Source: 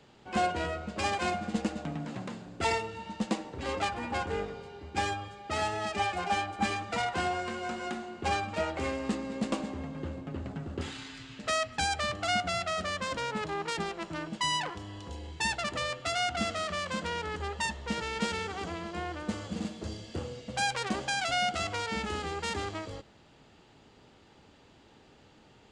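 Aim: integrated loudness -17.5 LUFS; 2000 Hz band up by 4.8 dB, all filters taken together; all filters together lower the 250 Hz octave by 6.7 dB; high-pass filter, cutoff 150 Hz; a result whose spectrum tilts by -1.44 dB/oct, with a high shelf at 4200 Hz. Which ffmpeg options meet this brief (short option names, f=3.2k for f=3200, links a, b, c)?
-af "highpass=150,equalizer=f=250:t=o:g=-8,equalizer=f=2k:t=o:g=5,highshelf=f=4.2k:g=5,volume=13dB"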